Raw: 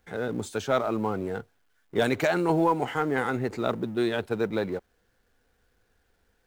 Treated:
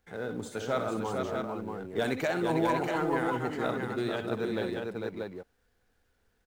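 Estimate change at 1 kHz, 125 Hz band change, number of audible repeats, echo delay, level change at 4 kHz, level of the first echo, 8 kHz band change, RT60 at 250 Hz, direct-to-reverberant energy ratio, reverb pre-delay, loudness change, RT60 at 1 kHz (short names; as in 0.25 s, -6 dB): -3.5 dB, -4.0 dB, 5, 63 ms, -3.5 dB, -8.5 dB, -3.5 dB, none, none, none, -4.0 dB, none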